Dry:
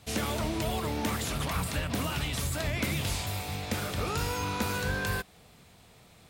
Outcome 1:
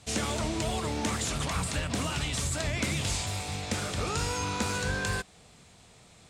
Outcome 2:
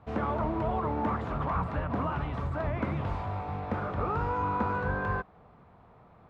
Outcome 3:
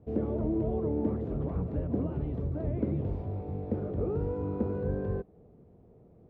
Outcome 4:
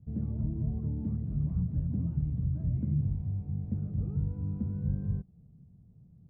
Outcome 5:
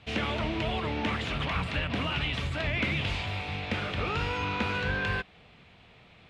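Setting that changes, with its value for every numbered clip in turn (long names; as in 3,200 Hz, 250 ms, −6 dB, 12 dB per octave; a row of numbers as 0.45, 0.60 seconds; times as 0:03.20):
low-pass with resonance, frequency: 7,800, 1,100, 420, 160, 2,800 Hertz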